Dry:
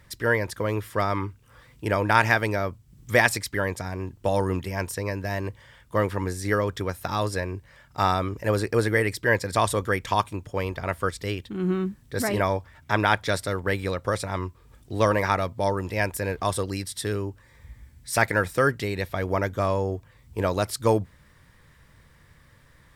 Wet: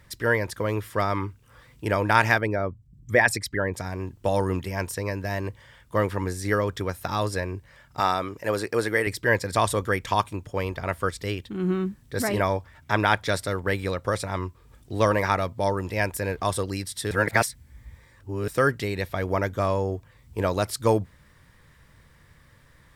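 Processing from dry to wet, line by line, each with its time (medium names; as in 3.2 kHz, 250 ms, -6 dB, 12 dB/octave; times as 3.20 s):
2.38–3.74 s: resonances exaggerated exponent 1.5
8.00–9.07 s: high-pass 290 Hz 6 dB/octave
17.11–18.48 s: reverse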